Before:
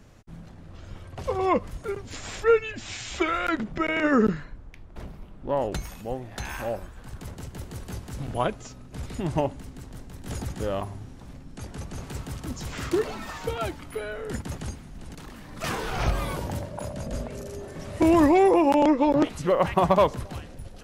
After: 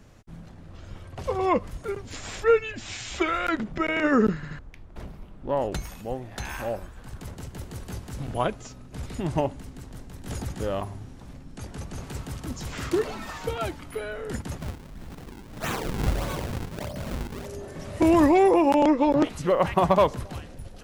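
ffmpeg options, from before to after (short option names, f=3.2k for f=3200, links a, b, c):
-filter_complex "[0:a]asettb=1/sr,asplit=3[a][b][c];[a]atrim=end=14.604[d];[b]atrim=start=14.6:end=17.46,asetpts=PTS-STARTPTS,afade=t=in:d=0.004:c=qsin,afade=t=out:st=2.856:d=0.004:c=qsin,acrusher=samples=42:mix=1:aa=0.000001:lfo=1:lforange=67.2:lforate=1.6[e];[c]atrim=start=17.456[f];[d][e]acrossfade=d=0.004:c1=hsin:c2=qsin[g];[g][f]acrossfade=d=0.004:c1=qsin:c2=hsin,asplit=4[h][i][j][k];[h]atrim=end=4.432[l];[i]atrim=start=4.348:end=4.432[m];[j]atrim=start=4.348:end=4.432[n];[k]atrim=start=4.588[o];[l][m]acrossfade=d=0.004:c1=hsin:c2=hsin[p];[p][n]acrossfade=d=0.004:c1=hsin:c2=hsin[q];[q][o]acrossfade=d=0.004:c1=hsin:c2=hsin"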